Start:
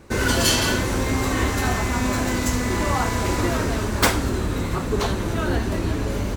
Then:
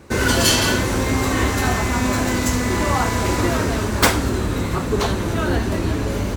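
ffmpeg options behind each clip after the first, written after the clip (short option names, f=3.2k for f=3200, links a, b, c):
-af "highpass=45,volume=3dB"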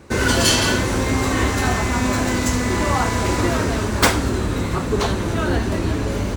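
-af "equalizer=f=13k:t=o:w=0.24:g=-9.5"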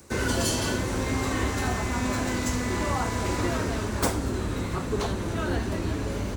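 -filter_complex "[0:a]acrossover=split=230|1000|5700[a][b][c][d];[c]alimiter=limit=-17.5dB:level=0:latency=1:release=382[e];[d]acompressor=mode=upward:threshold=-40dB:ratio=2.5[f];[a][b][e][f]amix=inputs=4:normalize=0,volume=-7.5dB"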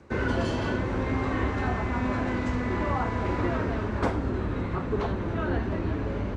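-af "lowpass=2.2k"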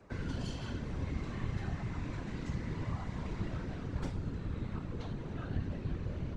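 -filter_complex "[0:a]acrossover=split=180|3000[a][b][c];[b]acompressor=threshold=-44dB:ratio=3[d];[a][d][c]amix=inputs=3:normalize=0,afftfilt=real='hypot(re,im)*cos(2*PI*random(0))':imag='hypot(re,im)*sin(2*PI*random(1))':win_size=512:overlap=0.75"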